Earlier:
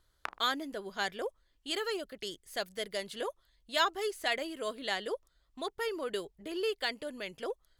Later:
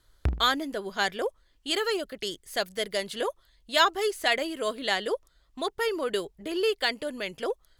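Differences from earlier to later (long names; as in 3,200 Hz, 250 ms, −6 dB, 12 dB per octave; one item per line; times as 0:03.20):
speech +7.0 dB
background: remove high-pass with resonance 1,100 Hz, resonance Q 2.4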